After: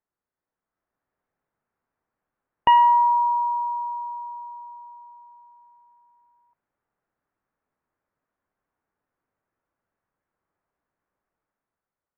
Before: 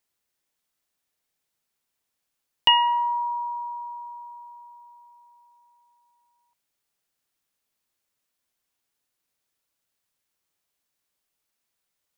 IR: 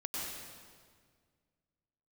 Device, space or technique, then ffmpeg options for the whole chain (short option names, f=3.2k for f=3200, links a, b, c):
action camera in a waterproof case: -af "lowpass=f=1.6k:w=0.5412,lowpass=f=1.6k:w=1.3066,dynaudnorm=f=170:g=9:m=8.5dB,volume=-2dB" -ar 32000 -c:a aac -b:a 64k